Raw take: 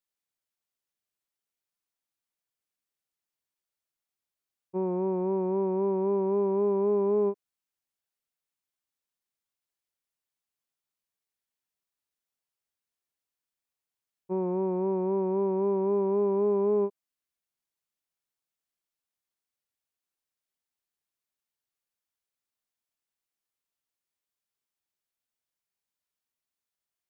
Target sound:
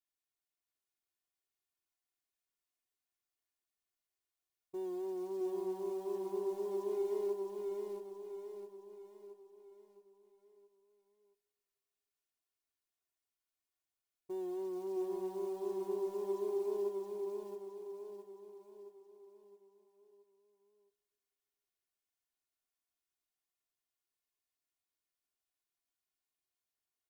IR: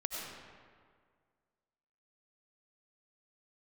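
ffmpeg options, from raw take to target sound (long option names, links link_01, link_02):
-filter_complex "[0:a]asettb=1/sr,asplit=3[link_01][link_02][link_03];[link_01]atrim=end=6.904[link_04];[link_02]atrim=start=6.9:end=7.3,asetpts=PTS-STARTPTS,afade=type=in:duration=0.004:curve=qsin,afade=type=out:start_time=0.396:duration=0.004:curve=qsin,aeval=exprs='val(0)+0.5*0.0133*sgn(val(0))':channel_layout=same[link_05];[link_03]atrim=start=7.296[link_06];[link_04][link_05]acrossfade=duration=0.004:curve1=hsin:curve2=qsin[link_07];[link_07][link_06]acrossfade=duration=0.004:curve1=qsin:curve2=hsin,alimiter=level_in=4.5dB:limit=-24dB:level=0:latency=1,volume=-4.5dB,asplit=2[link_08][link_09];[1:a]atrim=start_sample=2205,asetrate=33075,aresample=44100[link_10];[link_09][link_10]afir=irnorm=-1:irlink=0,volume=-23.5dB[link_11];[link_08][link_11]amix=inputs=2:normalize=0,acrusher=bits=6:mode=log:mix=0:aa=0.000001,aecho=1:1:2.8:0.76,aecho=1:1:668|1336|2004|2672|3340|4008:0.708|0.34|0.163|0.0783|0.0376|0.018,flanger=delay=7.5:depth=4.6:regen=-57:speed=0.42:shape=sinusoidal,volume=-4dB"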